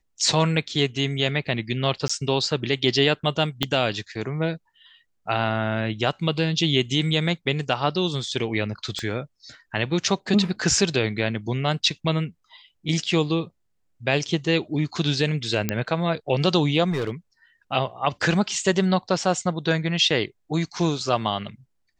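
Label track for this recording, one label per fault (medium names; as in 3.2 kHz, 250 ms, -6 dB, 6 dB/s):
2.080000	2.100000	dropout 15 ms
3.630000	3.630000	pop -7 dBFS
8.990000	8.990000	pop -17 dBFS
15.690000	15.690000	pop -7 dBFS
16.900000	17.110000	clipped -20.5 dBFS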